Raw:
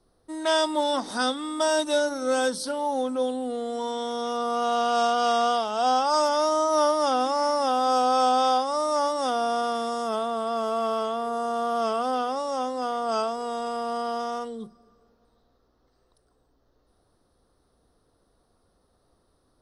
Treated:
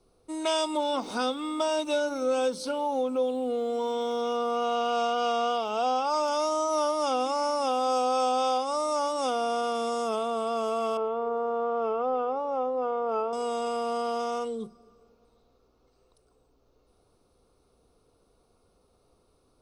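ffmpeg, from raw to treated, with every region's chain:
ffmpeg -i in.wav -filter_complex "[0:a]asettb=1/sr,asplit=3[link_01][link_02][link_03];[link_01]atrim=end=0.774[link_04];[link_02]atrim=start=0.77:end=6.28,asetpts=PTS-STARTPTS,afade=type=in:duration=0.004:curve=qsin,afade=type=out:start_time=5.506:duration=0.004:curve=qsin,aeval=exprs='val(0)*gte(abs(val(0)),0.00282)':channel_layout=same,equalizer=frequency=8800:width_type=o:width=1.3:gain=-9[link_05];[link_03]atrim=start=6.276[link_06];[link_04][link_05]acrossfade=duration=0.004:curve1=hsin:curve2=qsin[link_07];[link_07][link_06]acrossfade=duration=0.004:curve1=qsin:curve2=hsin,asettb=1/sr,asplit=3[link_08][link_09][link_10];[link_08]atrim=end=10.974[link_11];[link_09]atrim=start=10.97:end=13.33,asetpts=PTS-STARTPTS,afade=type=in:duration=0.004:curve=qsin,afade=type=out:start_time=2.356:duration=0.004:curve=qsin,lowpass=1400,aecho=1:1:2.3:0.35,atrim=end_sample=104076[link_12];[link_10]atrim=start=13.326[link_13];[link_11][link_12]acrossfade=duration=0.004:curve1=hsin:curve2=qsin[link_14];[link_14][link_13]acrossfade=duration=0.004:curve1=qsin:curve2=hsin,superequalizer=7b=1.58:11b=0.447:12b=2:15b=1.58,acompressor=threshold=-26dB:ratio=2" out.wav

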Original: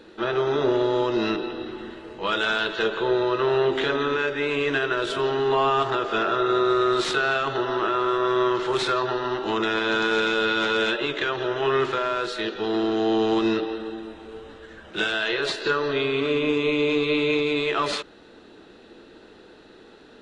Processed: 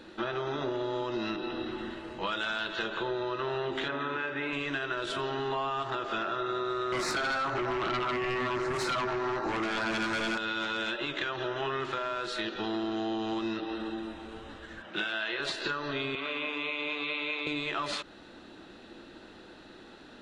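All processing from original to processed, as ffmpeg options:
ffmpeg -i in.wav -filter_complex "[0:a]asettb=1/sr,asplit=3[link_01][link_02][link_03];[link_01]atrim=end=3.884[link_04];[link_02]atrim=start=3.88:end=4.53,asetpts=PTS-STARTPTS,afade=type=in:duration=0.004:curve=qsin,afade=type=out:start_time=0.646:duration=0.004:curve=qsin,highpass=frequency=130:poles=1,bass=frequency=250:gain=1,treble=frequency=4000:gain=-14,asplit=2[link_05][link_06];[link_06]adelay=44,volume=-8dB[link_07];[link_05][link_07]amix=inputs=2:normalize=0,atrim=end_sample=28665[link_08];[link_03]atrim=start=4.526[link_09];[link_04][link_08]acrossfade=duration=0.004:curve1=hsin:curve2=qsin[link_10];[link_10][link_09]acrossfade=duration=0.004:curve1=qsin:curve2=hsin,asettb=1/sr,asplit=3[link_11][link_12][link_13];[link_11]atrim=end=6.924[link_14];[link_12]atrim=start=6.92:end=10.38,asetpts=PTS-STARTPTS,afade=type=in:duration=0.004:curve=qsin,afade=type=out:start_time=3.456:duration=0.004:curve=qsin,asuperstop=centerf=3200:order=4:qfactor=1.6,flanger=delay=15.5:depth=3.4:speed=1.1,aeval=exprs='0.2*sin(PI/2*3.16*val(0)/0.2)':channel_layout=same[link_15];[link_13]atrim=start=10.376[link_16];[link_14][link_15]acrossfade=duration=0.004:curve1=hsin:curve2=qsin[link_17];[link_17][link_16]acrossfade=duration=0.004:curve1=qsin:curve2=hsin,asettb=1/sr,asplit=3[link_18][link_19][link_20];[link_18]atrim=end=14.824[link_21];[link_19]atrim=start=14.82:end=15.4,asetpts=PTS-STARTPTS,afade=type=in:duration=0.004:curve=qsin,afade=type=out:start_time=0.576:duration=0.004:curve=qsin,highpass=160,lowpass=2600,aemphasis=mode=production:type=75fm[link_22];[link_20]atrim=start=15.396[link_23];[link_21][link_22]acrossfade=duration=0.004:curve1=hsin:curve2=qsin[link_24];[link_24][link_23]acrossfade=duration=0.004:curve1=qsin:curve2=hsin,asettb=1/sr,asplit=3[link_25][link_26][link_27];[link_25]atrim=end=16.154[link_28];[link_26]atrim=start=16.15:end=17.47,asetpts=PTS-STARTPTS,afade=type=in:duration=0.004:curve=qsin,afade=type=out:start_time=1.316:duration=0.004:curve=qsin,highpass=frequency=180:width_type=q:width=1.9,acrossover=split=530 4100:gain=0.141 1 0.158[link_29][link_30][link_31];[link_29][link_30][link_31]amix=inputs=3:normalize=0,bandreject=frequency=50:width_type=h:width=6,bandreject=frequency=100:width_type=h:width=6,bandreject=frequency=150:width_type=h:width=6,bandreject=frequency=200:width_type=h:width=6,bandreject=frequency=250:width_type=h:width=6,bandreject=frequency=300:width_type=h:width=6,bandreject=frequency=350:width_type=h:width=6[link_32];[link_27]atrim=start=17.466[link_33];[link_28][link_32]acrossfade=duration=0.004:curve1=hsin:curve2=qsin[link_34];[link_34][link_33]acrossfade=duration=0.004:curve1=qsin:curve2=hsin,equalizer=frequency=440:width=5.4:gain=-10.5,acompressor=threshold=-30dB:ratio=6" out.wav

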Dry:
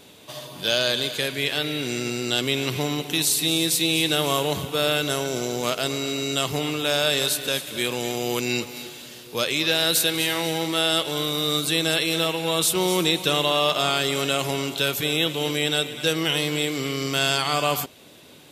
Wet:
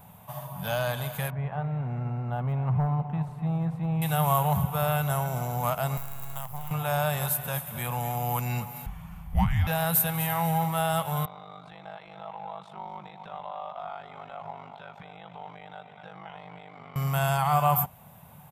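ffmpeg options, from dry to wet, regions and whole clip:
ffmpeg -i in.wav -filter_complex "[0:a]asettb=1/sr,asplit=3[link_01][link_02][link_03];[link_01]atrim=end=1.304[link_04];[link_02]atrim=start=1.3:end=4.02,asetpts=PTS-STARTPTS,afade=type=in:duration=0.004:curve=qsin,afade=type=out:start_time=2.716:duration=0.004:curve=qsin,lowpass=1100,volume=18dB,asoftclip=hard,volume=-18dB[link_05];[link_03]atrim=start=4.016[link_06];[link_04][link_05]acrossfade=duration=0.004:curve1=hsin:curve2=qsin[link_07];[link_07][link_06]acrossfade=duration=0.004:curve1=qsin:curve2=hsin,asettb=1/sr,asplit=3[link_08][link_09][link_10];[link_08]atrim=end=5.974[link_11];[link_09]atrim=start=5.97:end=6.71,asetpts=PTS-STARTPTS,afade=type=in:duration=0.004:curve=qsin,afade=type=out:start_time=0.736:duration=0.004:curve=qsin,equalizer=frequency=190:width=0.79:gain=-7.5,acrossover=split=590|3800[link_12][link_13][link_14];[link_12]acompressor=threshold=-41dB:ratio=4[link_15];[link_13]acompressor=threshold=-36dB:ratio=4[link_16];[link_14]acompressor=threshold=-37dB:ratio=4[link_17];[link_15][link_16][link_17]amix=inputs=3:normalize=0,acrusher=bits=5:dc=4:mix=0:aa=0.000001[link_18];[link_10]atrim=start=6.706[link_19];[link_11][link_18]acrossfade=duration=0.004:curve1=hsin:curve2=qsin[link_20];[link_20][link_19]acrossfade=duration=0.004:curve1=qsin:curve2=hsin,asettb=1/sr,asplit=3[link_21][link_22][link_23];[link_21]atrim=end=8.864[link_24];[link_22]atrim=start=8.86:end=9.67,asetpts=PTS-STARTPTS,afade=type=in:duration=0.004:curve=qsin,afade=type=out:start_time=0.806:duration=0.004:curve=qsin,lowpass=frequency=2300:poles=1,afreqshift=-410[link_25];[link_23]atrim=start=9.666[link_26];[link_24][link_25]acrossfade=duration=0.004:curve1=hsin:curve2=qsin[link_27];[link_27][link_26]acrossfade=duration=0.004:curve1=qsin:curve2=hsin,asettb=1/sr,asplit=3[link_28][link_29][link_30];[link_28]atrim=end=11.254[link_31];[link_29]atrim=start=11.25:end=16.96,asetpts=PTS-STARTPTS,afade=type=in:duration=0.004:curve=qsin,afade=type=out:start_time=5.706:duration=0.004:curve=qsin,aeval=exprs='val(0)*sin(2*PI*25*n/s)':channel_layout=same,highpass=370,equalizer=frequency=510:width_type=q:width=4:gain=-4,equalizer=frequency=1100:width_type=q:width=4:gain=-5,equalizer=frequency=1700:width_type=q:width=4:gain=-5,equalizer=frequency=2800:width_type=q:width=4:gain=-9,lowpass=frequency=3600:width=0.5412,lowpass=frequency=3600:width=1.3066,acompressor=threshold=-35dB:ratio=2.5:attack=3.2:release=140:knee=1:detection=peak[link_32];[link_30]atrim=start=16.956[link_33];[link_31][link_32]acrossfade=duration=0.004:curve1=hsin:curve2=qsin[link_34];[link_34][link_33]acrossfade=duration=0.004:curve1=qsin:curve2=hsin,firequalizer=gain_entry='entry(180,0);entry(300,-30);entry(780,0);entry(1500,-12);entry(4100,-29);entry(13000,-2)':delay=0.05:min_phase=1,acontrast=74" out.wav

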